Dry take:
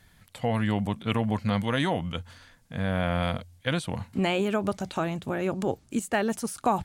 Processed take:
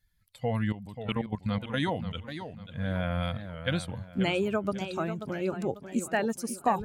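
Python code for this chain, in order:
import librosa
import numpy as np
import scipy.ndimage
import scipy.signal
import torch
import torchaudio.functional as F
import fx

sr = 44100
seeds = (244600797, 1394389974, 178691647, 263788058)

y = fx.bin_expand(x, sr, power=1.5)
y = fx.level_steps(y, sr, step_db=14, at=(0.72, 1.83))
y = fx.echo_warbled(y, sr, ms=540, feedback_pct=37, rate_hz=2.8, cents=147, wet_db=-10.0)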